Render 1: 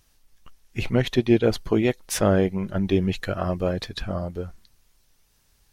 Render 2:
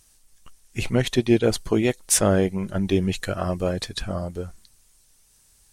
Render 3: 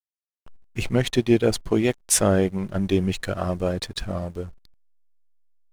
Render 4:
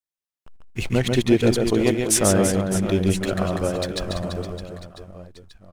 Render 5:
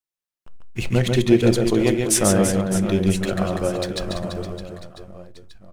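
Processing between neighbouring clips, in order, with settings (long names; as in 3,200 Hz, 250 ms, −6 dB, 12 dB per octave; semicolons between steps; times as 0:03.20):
parametric band 8,600 Hz +13.5 dB 1 octave
slack as between gear wheels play −37 dBFS
reverse bouncing-ball delay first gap 140 ms, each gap 1.4×, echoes 5
convolution reverb RT60 0.35 s, pre-delay 6 ms, DRR 12 dB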